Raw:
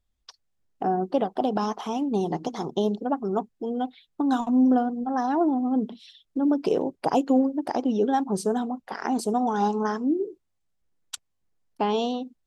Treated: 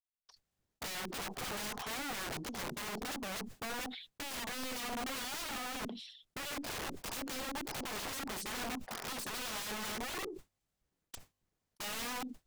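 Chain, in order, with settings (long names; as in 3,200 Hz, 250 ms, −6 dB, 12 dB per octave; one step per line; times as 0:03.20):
one-sided soft clipper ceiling −24.5 dBFS
downward expander −39 dBFS
wrap-around overflow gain 29.5 dB
level that may fall only so fast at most 55 dB per second
level −6 dB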